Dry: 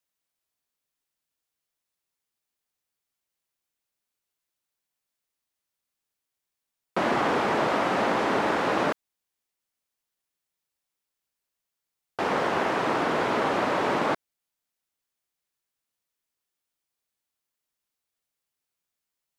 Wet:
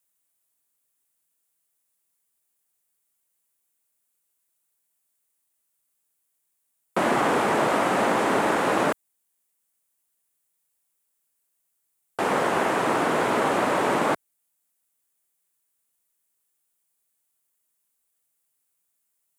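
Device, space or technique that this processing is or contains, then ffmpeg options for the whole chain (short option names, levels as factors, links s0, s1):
budget condenser microphone: -af "highpass=83,highshelf=f=6700:t=q:w=1.5:g=8.5,volume=1.33"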